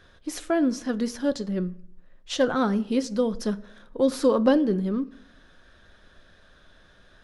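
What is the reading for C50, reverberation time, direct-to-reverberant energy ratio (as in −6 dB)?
19.5 dB, 0.65 s, 11.5 dB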